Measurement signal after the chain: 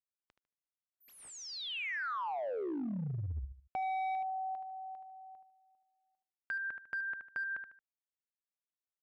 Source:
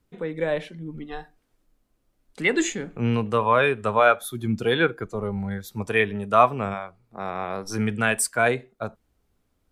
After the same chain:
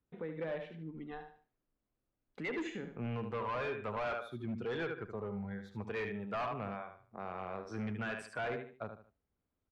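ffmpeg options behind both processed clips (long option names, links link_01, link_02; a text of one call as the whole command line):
ffmpeg -i in.wav -af "agate=range=-8dB:threshold=-55dB:ratio=16:detection=peak,highpass=frequency=41:poles=1,aecho=1:1:75|150|225:0.355|0.0923|0.024,asoftclip=type=hard:threshold=-20.5dB,lowpass=2600,acompressor=threshold=-42dB:ratio=1.5,volume=-6dB" out.wav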